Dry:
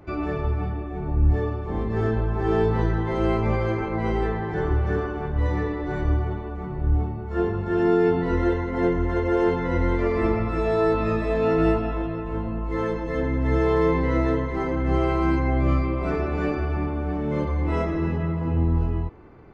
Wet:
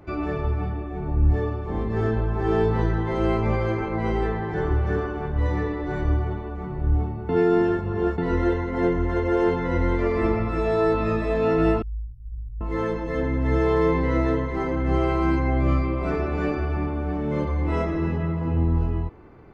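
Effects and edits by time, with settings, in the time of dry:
7.29–8.18 reverse
11.82–12.61 inverse Chebyshev band-stop 380–2400 Hz, stop band 80 dB

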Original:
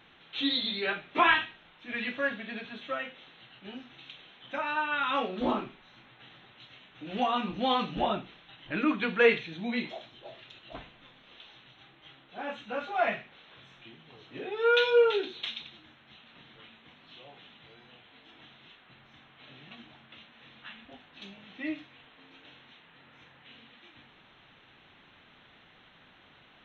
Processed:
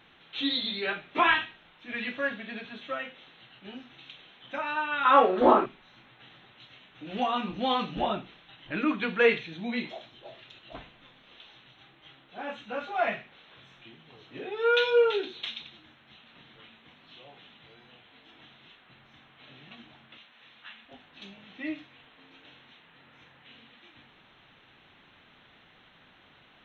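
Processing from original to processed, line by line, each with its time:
5.05–5.66 band shelf 750 Hz +11.5 dB 2.9 oct
20.17–20.91 low shelf 440 Hz -11 dB

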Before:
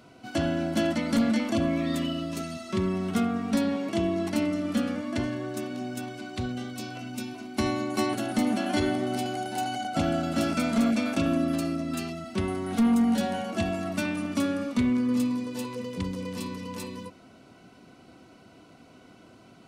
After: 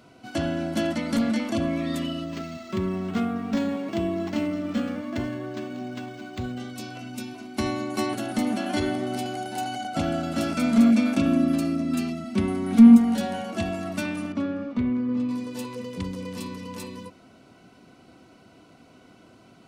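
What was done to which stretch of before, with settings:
2.24–6.6 decimation joined by straight lines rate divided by 4×
10.6–12.96 small resonant body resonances 230/2300 Hz, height 7 dB -> 12 dB
14.32–15.29 tape spacing loss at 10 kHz 29 dB

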